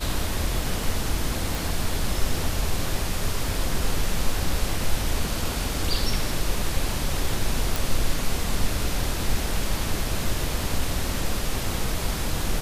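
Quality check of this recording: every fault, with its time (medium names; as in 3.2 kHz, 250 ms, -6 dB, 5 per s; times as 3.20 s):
1.55 s: pop
7.76 s: pop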